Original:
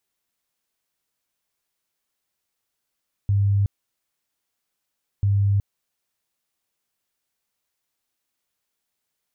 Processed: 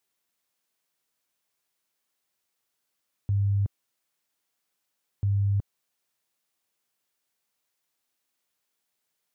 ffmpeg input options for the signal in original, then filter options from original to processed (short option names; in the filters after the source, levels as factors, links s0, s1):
-f lavfi -i "aevalsrc='0.158*sin(2*PI*100*mod(t,1.94))*lt(mod(t,1.94),37/100)':d=3.88:s=44100"
-af "highpass=f=140:p=1"